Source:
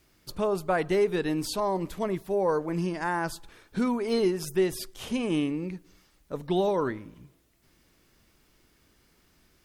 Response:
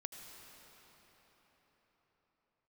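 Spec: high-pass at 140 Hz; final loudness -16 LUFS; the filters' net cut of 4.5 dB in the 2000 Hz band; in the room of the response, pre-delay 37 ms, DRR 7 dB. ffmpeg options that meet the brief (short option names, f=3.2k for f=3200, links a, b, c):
-filter_complex "[0:a]highpass=140,equalizer=f=2k:t=o:g=-6,asplit=2[a][b];[1:a]atrim=start_sample=2205,adelay=37[c];[b][c]afir=irnorm=-1:irlink=0,volume=-4.5dB[d];[a][d]amix=inputs=2:normalize=0,volume=12.5dB"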